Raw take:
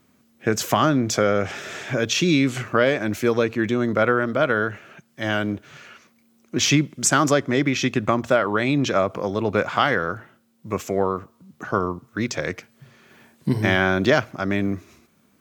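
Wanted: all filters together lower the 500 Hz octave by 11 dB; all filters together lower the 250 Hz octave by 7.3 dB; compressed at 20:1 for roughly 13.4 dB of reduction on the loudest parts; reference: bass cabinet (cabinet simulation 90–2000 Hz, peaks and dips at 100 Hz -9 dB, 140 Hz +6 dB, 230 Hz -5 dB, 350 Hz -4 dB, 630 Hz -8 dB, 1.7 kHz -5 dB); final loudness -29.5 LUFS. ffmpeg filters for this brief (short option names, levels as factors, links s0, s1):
-af "equalizer=f=250:t=o:g=-4,equalizer=f=500:t=o:g=-7.5,acompressor=threshold=0.0398:ratio=20,highpass=f=90:w=0.5412,highpass=f=90:w=1.3066,equalizer=f=100:t=q:w=4:g=-9,equalizer=f=140:t=q:w=4:g=6,equalizer=f=230:t=q:w=4:g=-5,equalizer=f=350:t=q:w=4:g=-4,equalizer=f=630:t=q:w=4:g=-8,equalizer=f=1700:t=q:w=4:g=-5,lowpass=f=2000:w=0.5412,lowpass=f=2000:w=1.3066,volume=2.51"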